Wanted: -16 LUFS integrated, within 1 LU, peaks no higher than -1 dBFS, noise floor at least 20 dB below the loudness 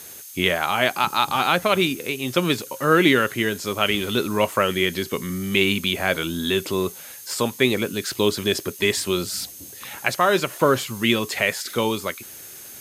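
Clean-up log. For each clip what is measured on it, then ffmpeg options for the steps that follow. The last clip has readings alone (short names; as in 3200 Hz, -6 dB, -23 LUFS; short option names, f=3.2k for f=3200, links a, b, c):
steady tone 6400 Hz; tone level -47 dBFS; noise floor -40 dBFS; noise floor target -42 dBFS; loudness -22.0 LUFS; peak -3.0 dBFS; loudness target -16.0 LUFS
-> -af "bandreject=f=6.4k:w=30"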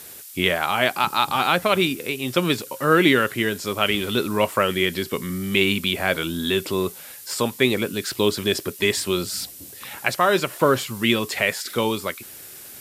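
steady tone none; noise floor -41 dBFS; noise floor target -42 dBFS
-> -af "afftdn=nr=6:nf=-41"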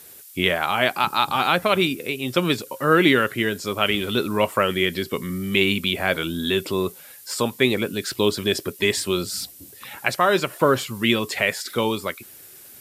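noise floor -45 dBFS; loudness -22.0 LUFS; peak -3.0 dBFS; loudness target -16.0 LUFS
-> -af "volume=6dB,alimiter=limit=-1dB:level=0:latency=1"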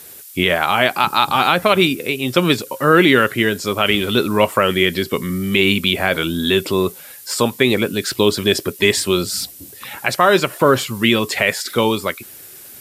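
loudness -16.5 LUFS; peak -1.0 dBFS; noise floor -39 dBFS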